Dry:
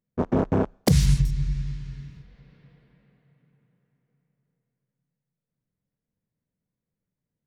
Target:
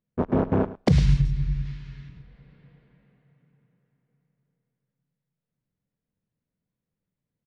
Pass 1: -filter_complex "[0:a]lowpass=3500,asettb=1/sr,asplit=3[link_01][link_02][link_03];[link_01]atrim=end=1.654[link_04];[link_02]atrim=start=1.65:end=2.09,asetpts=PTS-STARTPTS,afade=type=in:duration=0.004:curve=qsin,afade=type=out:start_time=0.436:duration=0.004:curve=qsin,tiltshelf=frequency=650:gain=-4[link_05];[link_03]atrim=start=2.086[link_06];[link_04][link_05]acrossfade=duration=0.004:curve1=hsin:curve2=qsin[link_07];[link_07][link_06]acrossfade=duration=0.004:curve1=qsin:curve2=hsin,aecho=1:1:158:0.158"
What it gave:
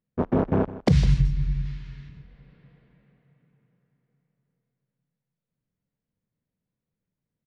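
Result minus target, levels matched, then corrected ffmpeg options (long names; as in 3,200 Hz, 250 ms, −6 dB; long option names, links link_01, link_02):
echo 51 ms late
-filter_complex "[0:a]lowpass=3500,asettb=1/sr,asplit=3[link_01][link_02][link_03];[link_01]atrim=end=1.654[link_04];[link_02]atrim=start=1.65:end=2.09,asetpts=PTS-STARTPTS,afade=type=in:duration=0.004:curve=qsin,afade=type=out:start_time=0.436:duration=0.004:curve=qsin,tiltshelf=frequency=650:gain=-4[link_05];[link_03]atrim=start=2.086[link_06];[link_04][link_05]acrossfade=duration=0.004:curve1=hsin:curve2=qsin[link_07];[link_07][link_06]acrossfade=duration=0.004:curve1=qsin:curve2=hsin,aecho=1:1:107:0.158"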